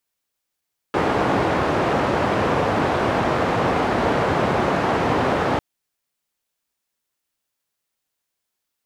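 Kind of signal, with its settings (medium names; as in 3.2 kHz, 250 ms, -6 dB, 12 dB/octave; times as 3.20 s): noise band 82–900 Hz, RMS -20 dBFS 4.65 s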